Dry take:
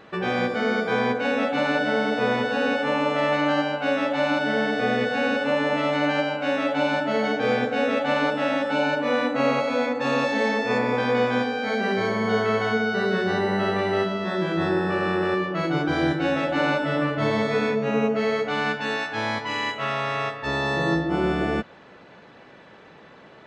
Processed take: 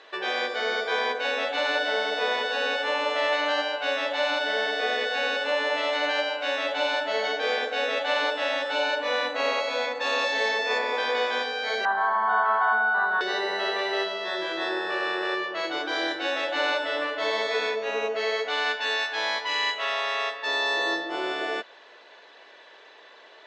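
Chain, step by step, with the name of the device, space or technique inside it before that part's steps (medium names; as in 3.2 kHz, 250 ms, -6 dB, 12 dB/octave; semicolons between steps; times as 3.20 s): phone speaker on a table (cabinet simulation 490–7500 Hz, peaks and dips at 530 Hz -7 dB, 800 Hz -7 dB, 1.3 kHz -9 dB, 2.3 kHz -4 dB, 3.7 kHz +4 dB); 11.85–13.21 s: FFT filter 220 Hz 0 dB, 490 Hz -18 dB, 820 Hz +13 dB, 1.5 kHz +7 dB, 2.3 kHz -19 dB, 3.4 kHz -14 dB, 5.5 kHz -30 dB, 8.6 kHz -23 dB; trim +3.5 dB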